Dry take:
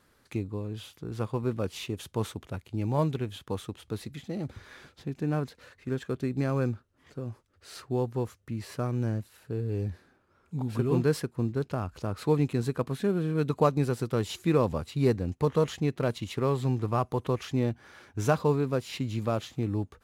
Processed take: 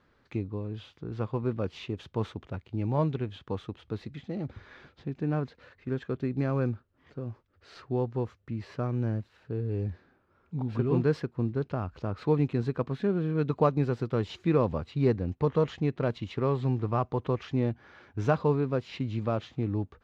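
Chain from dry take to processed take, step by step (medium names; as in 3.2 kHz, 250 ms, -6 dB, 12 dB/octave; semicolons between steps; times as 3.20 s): distance through air 200 m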